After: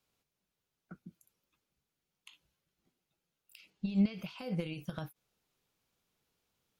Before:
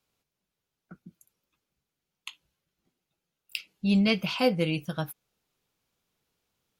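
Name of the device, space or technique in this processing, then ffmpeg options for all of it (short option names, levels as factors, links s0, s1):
de-esser from a sidechain: -filter_complex "[0:a]asettb=1/sr,asplit=3[s0][s1][s2];[s0]atrim=end=3.704[s3];[s1]atrim=start=3.7:end=4.14,asetpts=PTS-STARTPTS,afade=t=in:d=0.004:c=qsin,afade=t=out:st=0.436:d=0.004:c=qsin,lowpass=6200[s4];[s2]atrim=start=4.136[s5];[s3][s4]acrossfade=d=0.004:c1=hsin:c2=qsin[s6];[s6][s5]acrossfade=d=0.004:c1=qsin:c2=hsin,asplit=2[s7][s8];[s8]highpass=f=4100:w=0.5412,highpass=f=4100:w=1.3066,apad=whole_len=299827[s9];[s7][s9]sidechaincompress=threshold=0.00126:ratio=5:attack=4.7:release=41,volume=0.794"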